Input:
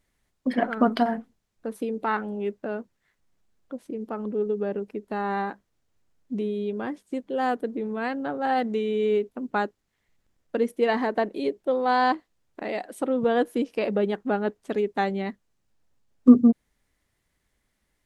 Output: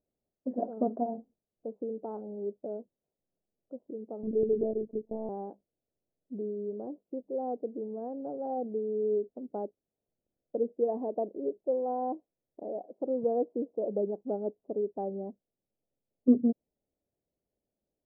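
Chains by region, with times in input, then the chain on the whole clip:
0:04.23–0:05.29: spectral tilt −4 dB per octave + one-pitch LPC vocoder at 8 kHz 220 Hz + one half of a high-frequency compander decoder only
whole clip: Butterworth low-pass 640 Hz 36 dB per octave; spectral tilt +4.5 dB per octave

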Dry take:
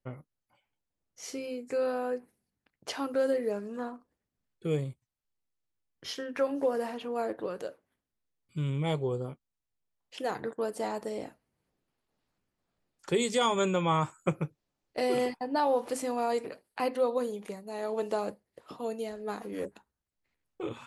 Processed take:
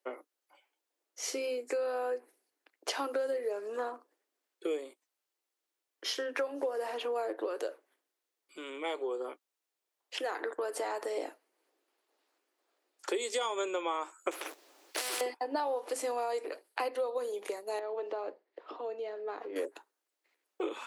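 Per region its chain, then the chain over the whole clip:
0:07.69–0:11.17: downward compressor 2 to 1, threshold −39 dBFS + dynamic equaliser 1,600 Hz, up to +6 dB, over −57 dBFS, Q 0.86
0:14.31–0:15.21: compressor whose output falls as the input rises −36 dBFS + leveller curve on the samples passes 2 + every bin compressed towards the loudest bin 4 to 1
0:17.79–0:19.56: downward compressor 2 to 1, threshold −44 dBFS + high-frequency loss of the air 240 metres
whole clip: Butterworth high-pass 310 Hz 48 dB per octave; downward compressor, threshold −37 dBFS; level +6 dB

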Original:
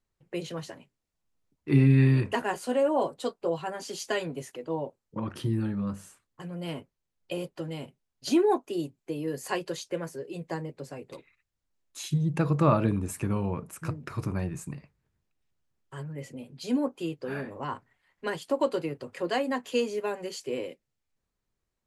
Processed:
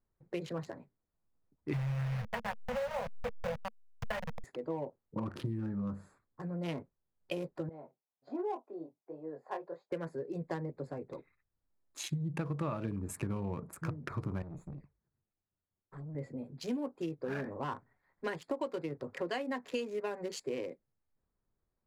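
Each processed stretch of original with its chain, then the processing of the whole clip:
0:01.73–0:04.44: hold until the input has moved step −25 dBFS + elliptic band-stop filter 220–470 Hz + bass and treble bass −1 dB, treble −13 dB
0:07.69–0:09.92: chorus effect 1.3 Hz, delay 19 ms, depth 5.8 ms + resonant band-pass 770 Hz, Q 1.6
0:14.42–0:16.15: flanger swept by the level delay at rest 11 ms, full sweep at −34.5 dBFS + tube saturation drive 40 dB, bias 0.65
whole clip: adaptive Wiener filter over 15 samples; dynamic equaliser 2,200 Hz, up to +4 dB, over −50 dBFS, Q 1.6; downward compressor 6 to 1, threshold −33 dBFS

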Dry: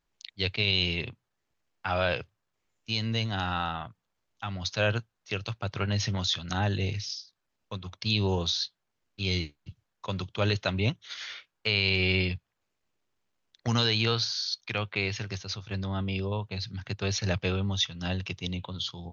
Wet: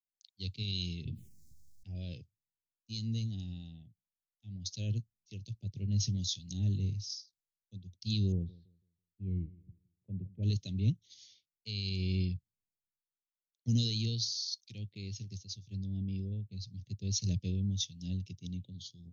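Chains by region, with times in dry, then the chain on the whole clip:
0:01.05–0:01.95: phaser swept by the level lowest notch 440 Hz, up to 3,700 Hz, full sweep at −33.5 dBFS + double-tracking delay 13 ms −9 dB + envelope flattener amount 70%
0:08.32–0:10.43: low-pass filter 1,700 Hz 24 dB per octave + floating-point word with a short mantissa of 8 bits + repeating echo 165 ms, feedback 43%, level −17 dB
whole clip: Chebyshev band-stop filter 200–6,100 Hz, order 2; parametric band 1,500 Hz −7.5 dB 0.32 octaves; multiband upward and downward expander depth 70%; level −3.5 dB

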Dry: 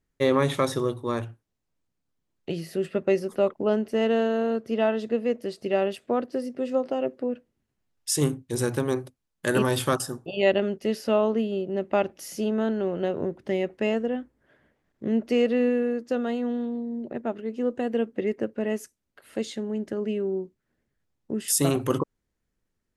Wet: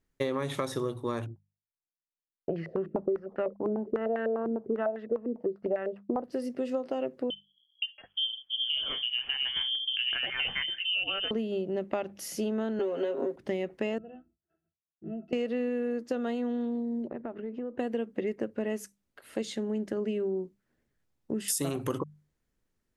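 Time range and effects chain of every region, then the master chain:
0:01.26–0:06.24: downward expander −46 dBFS + low-pass on a step sequencer 10 Hz 320–1,800 Hz
0:07.30–0:11.31: three-band delay without the direct sound lows, mids, highs 520/680 ms, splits 230/990 Hz + voice inversion scrambler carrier 3,300 Hz + multiband upward and downward compressor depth 40%
0:12.79–0:13.36: high-pass filter 250 Hz 24 dB per octave + comb filter 7.4 ms, depth 92% + multiband upward and downward compressor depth 70%
0:13.98–0:15.33: mains-hum notches 60/120/180/240/300 Hz + downward expander −57 dBFS + resonances in every octave E, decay 0.11 s
0:17.07–0:17.79: low-pass filter 2,100 Hz + downward compressor 10 to 1, threshold −32 dBFS
whole clip: mains-hum notches 50/100/150/200 Hz; downward compressor 10 to 1, threshold −27 dBFS

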